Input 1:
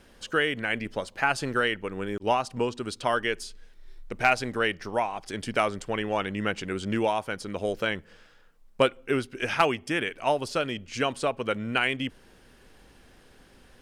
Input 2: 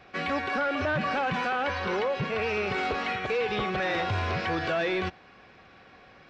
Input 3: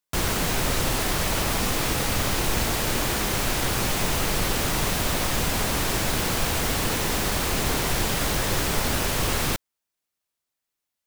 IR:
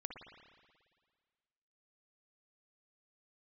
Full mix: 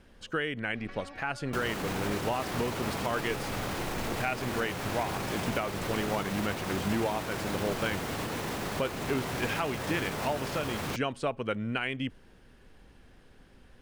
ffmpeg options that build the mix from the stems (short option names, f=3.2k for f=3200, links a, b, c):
-filter_complex "[0:a]bass=f=250:g=5,treble=f=4k:g=-5,volume=-4dB[a];[1:a]alimiter=level_in=6.5dB:limit=-24dB:level=0:latency=1,volume=-6.5dB,acompressor=threshold=-45dB:ratio=4,adelay=750,volume=-1.5dB[b];[2:a]highpass=99,highshelf=f=3.1k:g=-10.5,alimiter=level_in=1.5dB:limit=-24dB:level=0:latency=1,volume=-1.5dB,adelay=1400,volume=0dB[c];[a][b][c]amix=inputs=3:normalize=0,alimiter=limit=-19dB:level=0:latency=1:release=261"